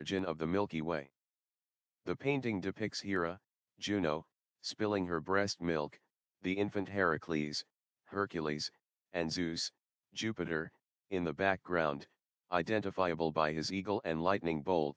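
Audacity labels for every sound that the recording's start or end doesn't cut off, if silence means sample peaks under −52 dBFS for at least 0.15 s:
2.060000	3.370000	sound
3.810000	4.220000	sound
4.640000	5.960000	sound
6.440000	7.620000	sound
8.090000	8.680000	sound
9.130000	9.690000	sound
10.150000	10.680000	sound
11.110000	12.040000	sound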